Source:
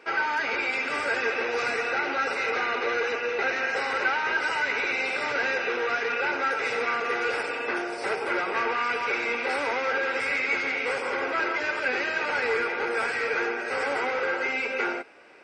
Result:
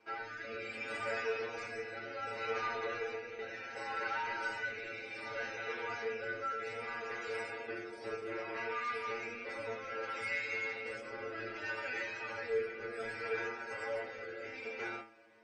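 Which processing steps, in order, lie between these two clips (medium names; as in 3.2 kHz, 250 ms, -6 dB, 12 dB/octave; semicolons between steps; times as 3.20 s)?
bass shelf 170 Hz +11 dB; inharmonic resonator 110 Hz, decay 0.37 s, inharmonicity 0.002; rotary cabinet horn 0.65 Hz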